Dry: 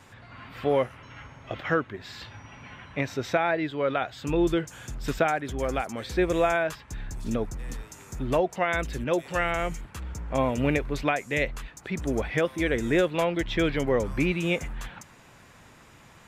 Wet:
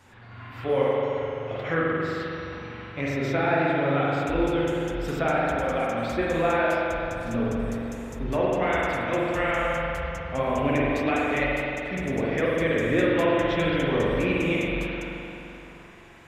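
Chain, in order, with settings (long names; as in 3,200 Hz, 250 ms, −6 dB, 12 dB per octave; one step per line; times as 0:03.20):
tape wow and flutter 25 cents
spring reverb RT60 3.1 s, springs 43 ms, chirp 75 ms, DRR −6 dB
flanger 1.6 Hz, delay 1.9 ms, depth 8.4 ms, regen −52%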